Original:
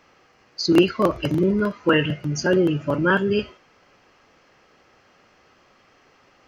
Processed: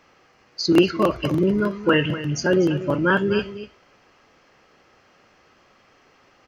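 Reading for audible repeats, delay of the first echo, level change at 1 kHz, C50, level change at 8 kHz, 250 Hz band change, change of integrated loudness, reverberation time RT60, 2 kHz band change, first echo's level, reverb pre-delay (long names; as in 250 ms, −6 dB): 1, 244 ms, 0.0 dB, no reverb audible, can't be measured, 0.0 dB, 0.0 dB, no reverb audible, 0.0 dB, −13.5 dB, no reverb audible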